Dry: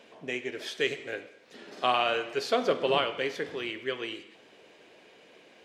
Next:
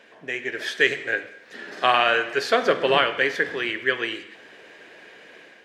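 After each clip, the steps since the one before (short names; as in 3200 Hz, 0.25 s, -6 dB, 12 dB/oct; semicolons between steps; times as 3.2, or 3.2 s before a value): bell 1700 Hz +12 dB 0.52 oct; notches 50/100/150/200/250 Hz; AGC gain up to 6 dB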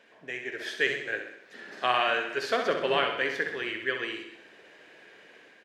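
feedback echo 64 ms, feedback 52%, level -7.5 dB; gain -7.5 dB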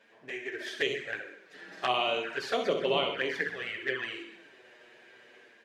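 envelope flanger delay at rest 9.8 ms, full sweep at -23.5 dBFS; on a send at -11 dB: reverb, pre-delay 5 ms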